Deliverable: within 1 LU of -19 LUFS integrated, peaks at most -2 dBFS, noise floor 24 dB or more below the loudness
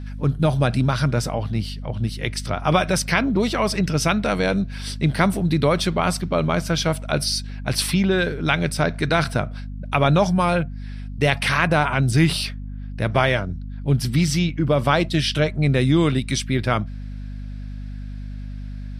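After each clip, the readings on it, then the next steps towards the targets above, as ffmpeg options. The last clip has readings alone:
hum 50 Hz; highest harmonic 250 Hz; hum level -29 dBFS; loudness -21.0 LUFS; peak level -3.0 dBFS; loudness target -19.0 LUFS
-> -af "bandreject=f=50:t=h:w=4,bandreject=f=100:t=h:w=4,bandreject=f=150:t=h:w=4,bandreject=f=200:t=h:w=4,bandreject=f=250:t=h:w=4"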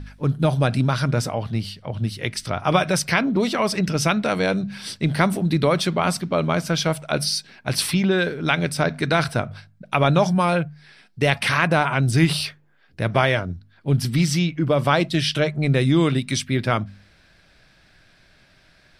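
hum not found; loudness -21.5 LUFS; peak level -3.5 dBFS; loudness target -19.0 LUFS
-> -af "volume=1.33,alimiter=limit=0.794:level=0:latency=1"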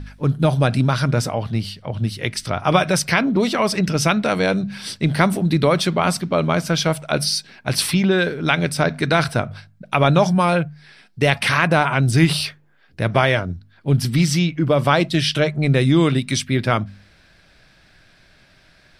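loudness -19.0 LUFS; peak level -2.0 dBFS; noise floor -54 dBFS

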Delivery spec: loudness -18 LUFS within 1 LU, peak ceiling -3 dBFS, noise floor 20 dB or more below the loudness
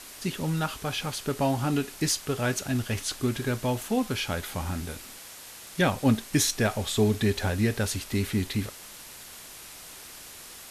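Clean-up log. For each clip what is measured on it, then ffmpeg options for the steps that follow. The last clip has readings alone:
noise floor -45 dBFS; noise floor target -48 dBFS; loudness -28.0 LUFS; peak level -10.0 dBFS; loudness target -18.0 LUFS
-> -af "afftdn=nr=6:nf=-45"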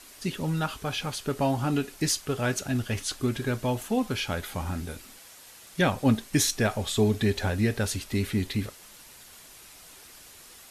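noise floor -50 dBFS; loudness -28.0 LUFS; peak level -10.0 dBFS; loudness target -18.0 LUFS
-> -af "volume=3.16,alimiter=limit=0.708:level=0:latency=1"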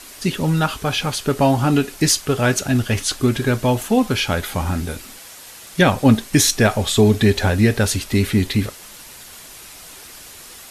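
loudness -18.0 LUFS; peak level -3.0 dBFS; noise floor -40 dBFS

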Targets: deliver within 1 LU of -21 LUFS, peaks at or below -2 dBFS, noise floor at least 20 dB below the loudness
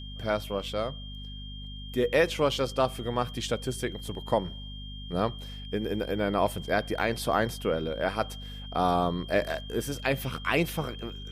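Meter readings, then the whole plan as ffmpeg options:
hum 50 Hz; highest harmonic 250 Hz; hum level -38 dBFS; steady tone 3.2 kHz; tone level -44 dBFS; loudness -29.5 LUFS; peak level -11.0 dBFS; loudness target -21.0 LUFS
-> -af "bandreject=f=50:t=h:w=6,bandreject=f=100:t=h:w=6,bandreject=f=150:t=h:w=6,bandreject=f=200:t=h:w=6,bandreject=f=250:t=h:w=6"
-af "bandreject=f=3200:w=30"
-af "volume=2.66"

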